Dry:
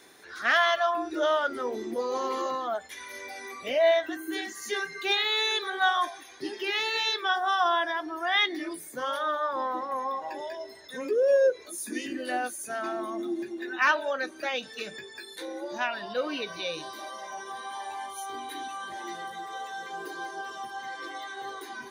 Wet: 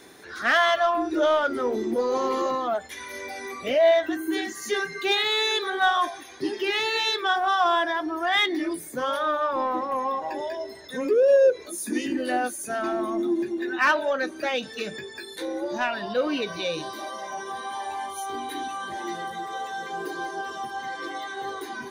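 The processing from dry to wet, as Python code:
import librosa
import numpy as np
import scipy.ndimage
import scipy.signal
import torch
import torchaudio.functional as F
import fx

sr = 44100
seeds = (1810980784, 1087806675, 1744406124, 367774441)

p1 = fx.low_shelf(x, sr, hz=460.0, db=7.5)
p2 = 10.0 ** (-26.5 / 20.0) * np.tanh(p1 / 10.0 ** (-26.5 / 20.0))
y = p1 + (p2 * 10.0 ** (-6.5 / 20.0))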